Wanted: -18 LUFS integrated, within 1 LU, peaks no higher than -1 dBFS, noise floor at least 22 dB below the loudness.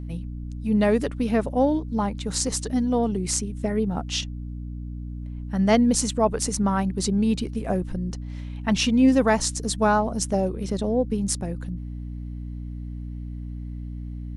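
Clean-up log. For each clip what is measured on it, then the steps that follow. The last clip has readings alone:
hum 60 Hz; harmonics up to 300 Hz; hum level -31 dBFS; loudness -24.0 LUFS; peak -6.0 dBFS; loudness target -18.0 LUFS
-> de-hum 60 Hz, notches 5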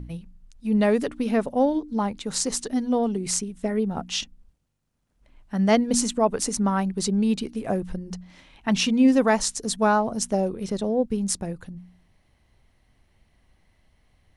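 hum none; loudness -24.0 LUFS; peak -5.0 dBFS; loudness target -18.0 LUFS
-> gain +6 dB; limiter -1 dBFS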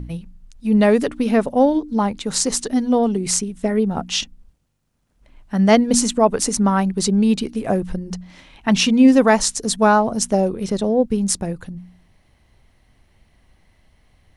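loudness -18.0 LUFS; peak -1.0 dBFS; noise floor -60 dBFS

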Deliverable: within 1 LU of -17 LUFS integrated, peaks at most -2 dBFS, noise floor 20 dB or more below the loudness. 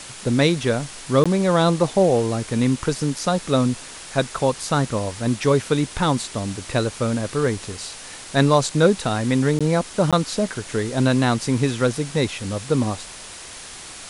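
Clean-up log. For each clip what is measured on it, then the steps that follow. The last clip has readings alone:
dropouts 3; longest dropout 16 ms; noise floor -38 dBFS; noise floor target -41 dBFS; loudness -21.0 LUFS; peak -3.5 dBFS; loudness target -17.0 LUFS
-> interpolate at 1.24/9.59/10.11, 16 ms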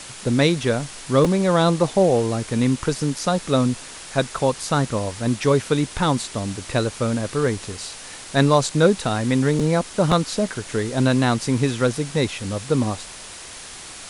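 dropouts 0; noise floor -38 dBFS; noise floor target -41 dBFS
-> denoiser 6 dB, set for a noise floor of -38 dBFS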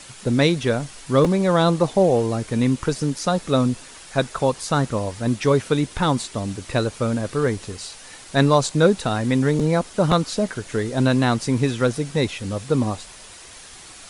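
noise floor -42 dBFS; loudness -21.0 LUFS; peak -3.5 dBFS; loudness target -17.0 LUFS
-> gain +4 dB; limiter -2 dBFS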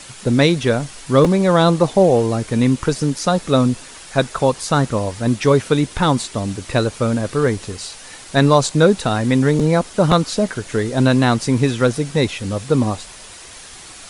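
loudness -17.5 LUFS; peak -2.0 dBFS; noise floor -38 dBFS

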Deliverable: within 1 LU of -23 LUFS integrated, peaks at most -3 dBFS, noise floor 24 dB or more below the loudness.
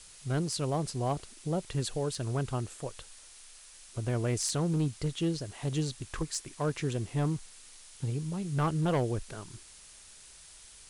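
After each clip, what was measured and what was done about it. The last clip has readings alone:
clipped 1.0%; flat tops at -23.0 dBFS; noise floor -53 dBFS; noise floor target -57 dBFS; loudness -33.0 LUFS; peak -23.0 dBFS; loudness target -23.0 LUFS
-> clip repair -23 dBFS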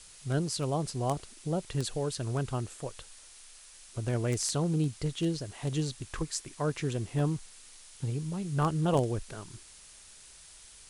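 clipped 0.0%; noise floor -53 dBFS; noise floor target -57 dBFS
-> noise print and reduce 6 dB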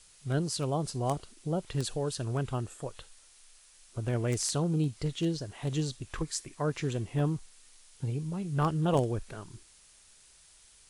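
noise floor -59 dBFS; loudness -32.5 LUFS; peak -14.0 dBFS; loudness target -23.0 LUFS
-> gain +9.5 dB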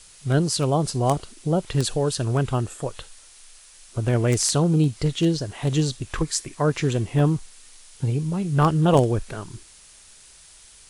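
loudness -23.0 LUFS; peak -4.5 dBFS; noise floor -50 dBFS

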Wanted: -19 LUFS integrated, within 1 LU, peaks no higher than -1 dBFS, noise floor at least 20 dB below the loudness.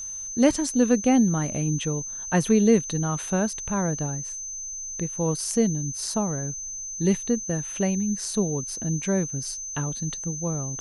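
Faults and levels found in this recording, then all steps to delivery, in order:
steady tone 6200 Hz; tone level -32 dBFS; loudness -25.0 LUFS; peak -7.5 dBFS; loudness target -19.0 LUFS
-> notch 6200 Hz, Q 30; gain +6 dB

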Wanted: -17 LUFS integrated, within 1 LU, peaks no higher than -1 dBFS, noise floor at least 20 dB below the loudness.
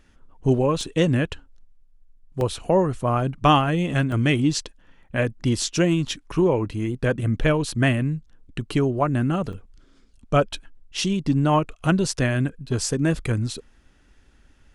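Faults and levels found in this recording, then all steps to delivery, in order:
dropouts 4; longest dropout 1.4 ms; loudness -23.0 LUFS; peak -5.0 dBFS; loudness target -17.0 LUFS
-> interpolate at 0.81/2.41/4.12/9.53, 1.4 ms; gain +6 dB; limiter -1 dBFS

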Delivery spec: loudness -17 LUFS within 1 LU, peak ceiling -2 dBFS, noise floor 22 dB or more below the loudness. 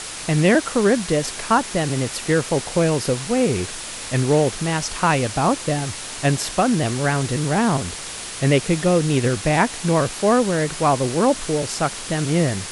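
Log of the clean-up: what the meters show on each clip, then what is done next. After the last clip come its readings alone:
noise floor -32 dBFS; noise floor target -43 dBFS; loudness -20.5 LUFS; peak -4.5 dBFS; loudness target -17.0 LUFS
-> denoiser 11 dB, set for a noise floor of -32 dBFS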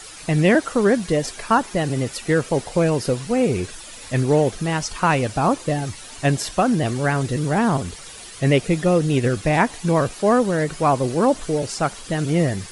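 noise floor -39 dBFS; noise floor target -43 dBFS
-> denoiser 6 dB, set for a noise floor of -39 dBFS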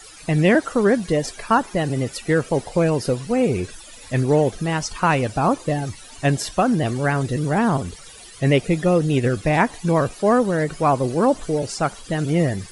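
noise floor -42 dBFS; noise floor target -43 dBFS
-> denoiser 6 dB, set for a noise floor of -42 dBFS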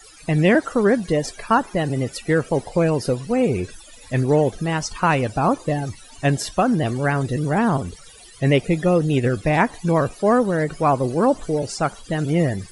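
noise floor -45 dBFS; loudness -20.5 LUFS; peak -4.5 dBFS; loudness target -17.0 LUFS
-> gain +3.5 dB; limiter -2 dBFS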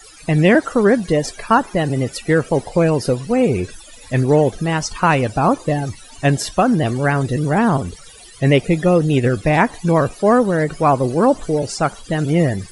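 loudness -17.0 LUFS; peak -2.0 dBFS; noise floor -41 dBFS

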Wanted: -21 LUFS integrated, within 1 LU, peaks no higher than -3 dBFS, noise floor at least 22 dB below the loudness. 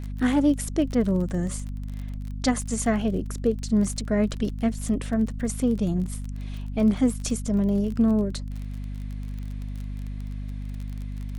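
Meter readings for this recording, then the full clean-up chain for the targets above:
ticks 28/s; hum 50 Hz; harmonics up to 250 Hz; hum level -30 dBFS; loudness -26.5 LUFS; peak -9.5 dBFS; loudness target -21.0 LUFS
-> de-click; de-hum 50 Hz, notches 5; gain +5.5 dB

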